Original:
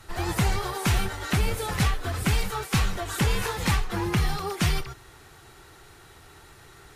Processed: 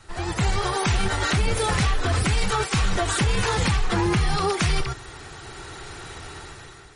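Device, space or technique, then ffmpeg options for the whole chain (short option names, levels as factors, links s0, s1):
low-bitrate web radio: -filter_complex "[0:a]asplit=3[s0][s1][s2];[s0]afade=t=out:st=3.22:d=0.02[s3];[s1]equalizer=f=100:w=0.76:g=3.5,afade=t=in:st=3.22:d=0.02,afade=t=out:st=3.81:d=0.02[s4];[s2]afade=t=in:st=3.81:d=0.02[s5];[s3][s4][s5]amix=inputs=3:normalize=0,dynaudnorm=f=270:g=5:m=4.47,alimiter=limit=0.224:level=0:latency=1:release=40" -ar 48000 -c:a libmp3lame -b:a 40k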